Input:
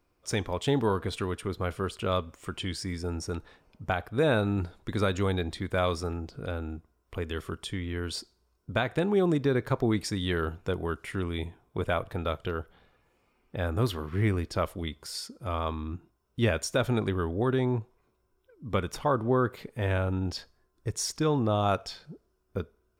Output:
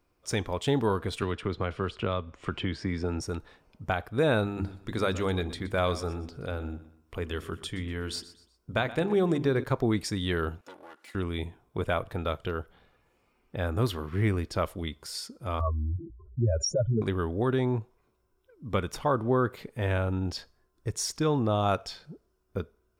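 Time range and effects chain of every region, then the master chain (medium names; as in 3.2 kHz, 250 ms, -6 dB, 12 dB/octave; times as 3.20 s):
1.22–3.21 s: low-pass 3.6 kHz + three bands compressed up and down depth 100%
4.44–9.64 s: hum notches 50/100/150/200/250/300/350 Hz + feedback delay 122 ms, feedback 36%, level -16 dB
10.61–11.15 s: comb filter that takes the minimum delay 3.5 ms + high-pass 370 Hz + compression 2:1, threshold -53 dBFS
15.60–17.02 s: spectral contrast enhancement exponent 3.7 + comb of notches 250 Hz + level flattener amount 50%
whole clip: none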